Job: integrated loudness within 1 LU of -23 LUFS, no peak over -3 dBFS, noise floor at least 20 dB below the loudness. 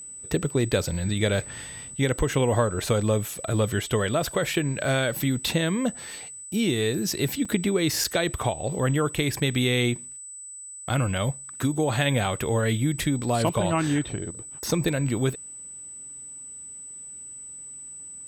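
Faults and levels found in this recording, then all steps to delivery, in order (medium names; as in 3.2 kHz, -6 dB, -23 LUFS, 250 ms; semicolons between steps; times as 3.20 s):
dropouts 2; longest dropout 4.8 ms; steady tone 8 kHz; tone level -38 dBFS; loudness -25.5 LUFS; peak level -9.5 dBFS; loudness target -23.0 LUFS
-> interpolate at 7.45/8.04 s, 4.8 ms; band-stop 8 kHz, Q 30; trim +2.5 dB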